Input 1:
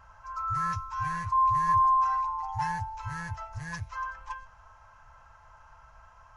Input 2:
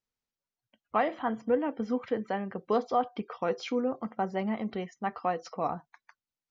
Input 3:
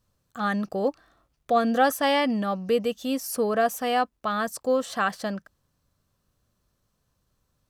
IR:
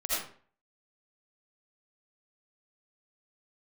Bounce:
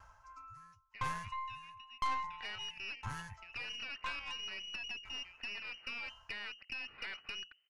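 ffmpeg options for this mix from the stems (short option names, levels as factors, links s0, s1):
-filter_complex "[0:a]highshelf=f=4800:g=9.5,aeval=exprs='val(0)*pow(10,-40*if(lt(mod(0.99*n/s,1),2*abs(0.99)/1000),1-mod(0.99*n/s,1)/(2*abs(0.99)/1000),(mod(0.99*n/s,1)-2*abs(0.99)/1000)/(1-2*abs(0.99)/1000))/20)':c=same,volume=1.12[s0];[1:a]acompressor=threshold=0.00891:ratio=2,volume=0.2,asplit=2[s1][s2];[2:a]bandreject=f=60:t=h:w=6,bandreject=f=120:t=h:w=6,bandreject=f=180:t=h:w=6,bandreject=f=240:t=h:w=6,bandreject=f=300:t=h:w=6,bandreject=f=360:t=h:w=6,bandreject=f=420:t=h:w=6,asoftclip=type=tanh:threshold=0.0398,adelay=2050,volume=0.891[s3];[s2]apad=whole_len=429675[s4];[s3][s4]sidechaincompress=threshold=0.00282:ratio=8:attack=5.7:release=390[s5];[s1][s5]amix=inputs=2:normalize=0,lowpass=f=2600:t=q:w=0.5098,lowpass=f=2600:t=q:w=0.6013,lowpass=f=2600:t=q:w=0.9,lowpass=f=2600:t=q:w=2.563,afreqshift=-3100,acompressor=threshold=0.0158:ratio=16,volume=1[s6];[s0][s6]amix=inputs=2:normalize=0,aeval=exprs='(tanh(35.5*val(0)+0.75)-tanh(0.75))/35.5':c=same"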